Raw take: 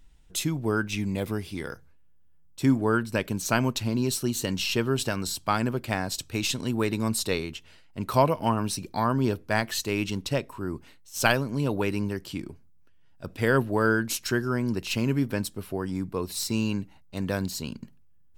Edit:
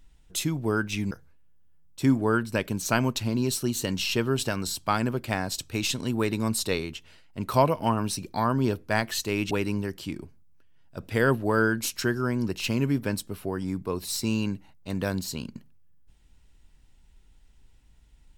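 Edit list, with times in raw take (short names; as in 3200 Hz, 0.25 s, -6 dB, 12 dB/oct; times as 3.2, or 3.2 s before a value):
1.11–1.71 cut
10.11–11.78 cut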